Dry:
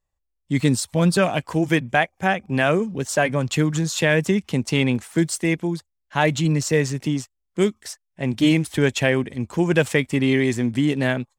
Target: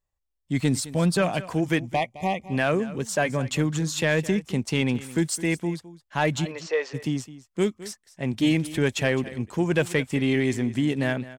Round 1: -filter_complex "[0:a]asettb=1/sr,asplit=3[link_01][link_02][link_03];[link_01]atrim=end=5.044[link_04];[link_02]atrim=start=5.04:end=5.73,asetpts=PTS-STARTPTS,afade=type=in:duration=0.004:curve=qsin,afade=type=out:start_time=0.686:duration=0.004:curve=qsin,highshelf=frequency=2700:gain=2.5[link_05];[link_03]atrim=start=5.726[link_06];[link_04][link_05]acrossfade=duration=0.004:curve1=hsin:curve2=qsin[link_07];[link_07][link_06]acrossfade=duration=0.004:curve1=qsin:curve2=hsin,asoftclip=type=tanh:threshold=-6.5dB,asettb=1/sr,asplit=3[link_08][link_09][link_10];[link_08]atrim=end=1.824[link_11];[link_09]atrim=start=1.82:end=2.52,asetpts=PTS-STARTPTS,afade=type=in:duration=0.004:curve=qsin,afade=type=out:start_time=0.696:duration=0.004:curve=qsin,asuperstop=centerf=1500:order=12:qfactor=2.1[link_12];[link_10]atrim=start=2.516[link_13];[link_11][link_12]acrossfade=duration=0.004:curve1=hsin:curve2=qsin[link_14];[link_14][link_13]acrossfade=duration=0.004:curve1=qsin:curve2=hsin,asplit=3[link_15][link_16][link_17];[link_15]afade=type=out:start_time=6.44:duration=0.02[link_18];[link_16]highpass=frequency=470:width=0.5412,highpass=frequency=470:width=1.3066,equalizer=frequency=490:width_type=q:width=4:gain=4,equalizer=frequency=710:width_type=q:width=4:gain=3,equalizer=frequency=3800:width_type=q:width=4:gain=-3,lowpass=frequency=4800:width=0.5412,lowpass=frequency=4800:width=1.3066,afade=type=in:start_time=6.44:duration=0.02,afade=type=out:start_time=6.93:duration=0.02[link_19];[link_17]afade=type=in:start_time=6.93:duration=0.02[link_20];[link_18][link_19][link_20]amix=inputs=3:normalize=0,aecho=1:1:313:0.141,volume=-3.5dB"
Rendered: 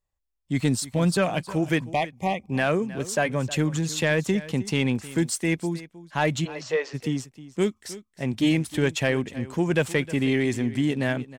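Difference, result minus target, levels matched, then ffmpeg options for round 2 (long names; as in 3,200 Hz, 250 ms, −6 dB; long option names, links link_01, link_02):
echo 101 ms late
-filter_complex "[0:a]asettb=1/sr,asplit=3[link_01][link_02][link_03];[link_01]atrim=end=5.044[link_04];[link_02]atrim=start=5.04:end=5.73,asetpts=PTS-STARTPTS,afade=type=in:duration=0.004:curve=qsin,afade=type=out:start_time=0.686:duration=0.004:curve=qsin,highshelf=frequency=2700:gain=2.5[link_05];[link_03]atrim=start=5.726[link_06];[link_04][link_05]acrossfade=duration=0.004:curve1=hsin:curve2=qsin[link_07];[link_07][link_06]acrossfade=duration=0.004:curve1=qsin:curve2=hsin,asoftclip=type=tanh:threshold=-6.5dB,asettb=1/sr,asplit=3[link_08][link_09][link_10];[link_08]atrim=end=1.824[link_11];[link_09]atrim=start=1.82:end=2.52,asetpts=PTS-STARTPTS,afade=type=in:duration=0.004:curve=qsin,afade=type=out:start_time=0.696:duration=0.004:curve=qsin,asuperstop=centerf=1500:order=12:qfactor=2.1[link_12];[link_10]atrim=start=2.516[link_13];[link_11][link_12]acrossfade=duration=0.004:curve1=hsin:curve2=qsin[link_14];[link_14][link_13]acrossfade=duration=0.004:curve1=qsin:curve2=hsin,asplit=3[link_15][link_16][link_17];[link_15]afade=type=out:start_time=6.44:duration=0.02[link_18];[link_16]highpass=frequency=470:width=0.5412,highpass=frequency=470:width=1.3066,equalizer=frequency=490:width_type=q:width=4:gain=4,equalizer=frequency=710:width_type=q:width=4:gain=3,equalizer=frequency=3800:width_type=q:width=4:gain=-3,lowpass=frequency=4800:width=0.5412,lowpass=frequency=4800:width=1.3066,afade=type=in:start_time=6.44:duration=0.02,afade=type=out:start_time=6.93:duration=0.02[link_19];[link_17]afade=type=in:start_time=6.93:duration=0.02[link_20];[link_18][link_19][link_20]amix=inputs=3:normalize=0,aecho=1:1:212:0.141,volume=-3.5dB"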